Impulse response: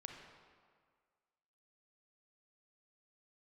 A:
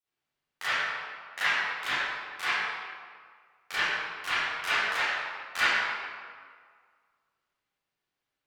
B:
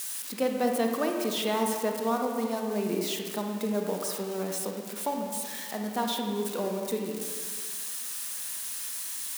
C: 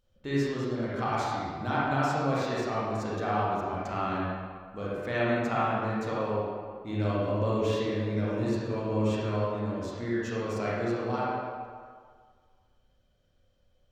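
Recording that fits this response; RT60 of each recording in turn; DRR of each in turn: B; 1.8 s, 1.8 s, 1.8 s; -15.5 dB, 2.0 dB, -7.5 dB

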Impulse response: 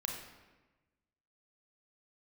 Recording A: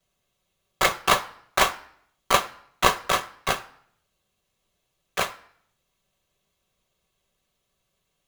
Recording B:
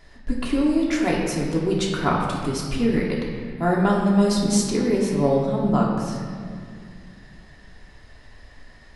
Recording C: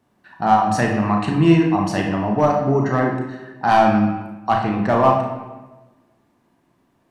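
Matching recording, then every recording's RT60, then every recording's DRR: C; no single decay rate, 2.2 s, 1.2 s; -7.0 dB, -3.5 dB, 0.0 dB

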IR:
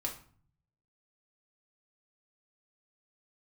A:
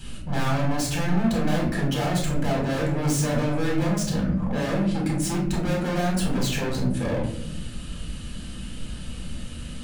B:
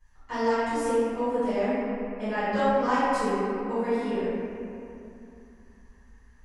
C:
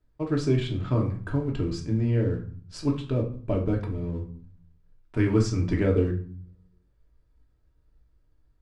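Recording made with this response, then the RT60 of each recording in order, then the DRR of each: C; 0.80 s, 2.8 s, 0.45 s; -3.0 dB, -18.0 dB, -0.5 dB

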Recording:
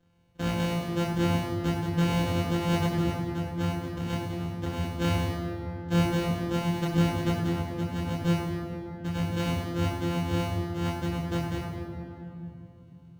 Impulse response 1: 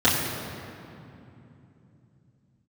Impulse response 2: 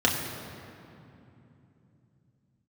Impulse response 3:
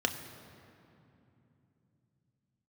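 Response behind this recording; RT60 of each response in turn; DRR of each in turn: 1; 2.9 s, 2.9 s, 2.9 s; -10.5 dB, -2.5 dB, 5.0 dB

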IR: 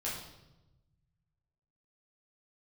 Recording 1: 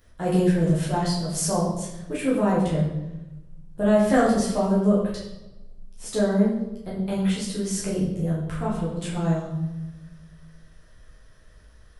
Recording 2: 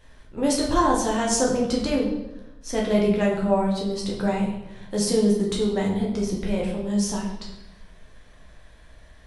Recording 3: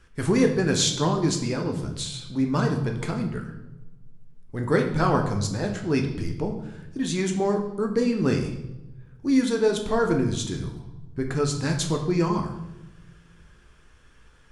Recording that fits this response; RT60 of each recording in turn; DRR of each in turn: 1; 1.0 s, 1.0 s, 1.0 s; -7.5 dB, -3.5 dB, 2.5 dB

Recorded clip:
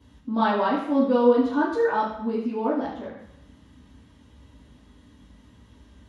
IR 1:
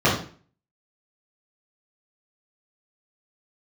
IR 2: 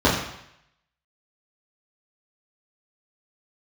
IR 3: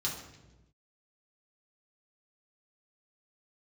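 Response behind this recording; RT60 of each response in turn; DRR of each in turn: 2; 0.45 s, 0.75 s, 1.1 s; -8.5 dB, -8.5 dB, -5.0 dB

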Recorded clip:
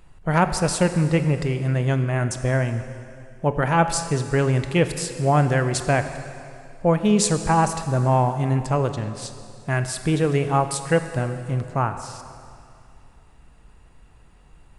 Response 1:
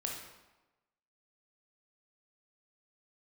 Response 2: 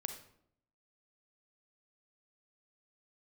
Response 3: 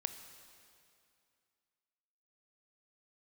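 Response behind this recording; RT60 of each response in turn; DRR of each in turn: 3; 1.1 s, 0.70 s, 2.4 s; -0.5 dB, 6.5 dB, 8.5 dB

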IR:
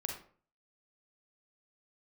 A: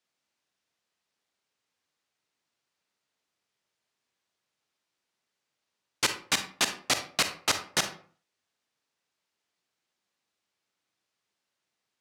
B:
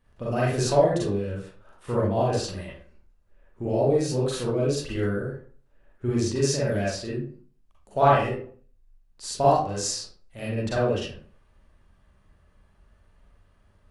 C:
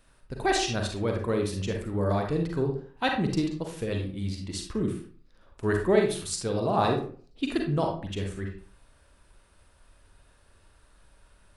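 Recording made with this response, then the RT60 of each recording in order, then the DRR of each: C; 0.45 s, 0.45 s, 0.45 s; 7.5 dB, -7.0 dB, 1.5 dB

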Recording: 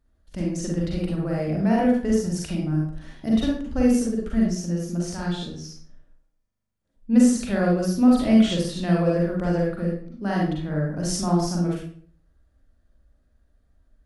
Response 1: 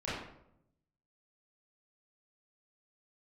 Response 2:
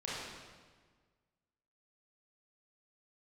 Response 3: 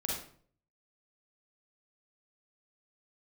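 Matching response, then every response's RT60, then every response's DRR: 3; 0.75 s, 1.5 s, 0.50 s; -10.5 dB, -8.0 dB, -3.5 dB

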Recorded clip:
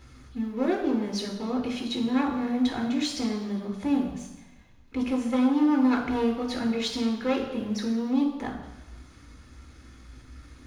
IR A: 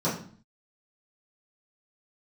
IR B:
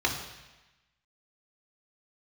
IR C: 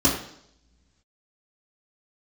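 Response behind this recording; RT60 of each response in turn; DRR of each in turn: B; 0.45 s, 1.1 s, 0.70 s; -11.5 dB, -0.5 dB, -7.0 dB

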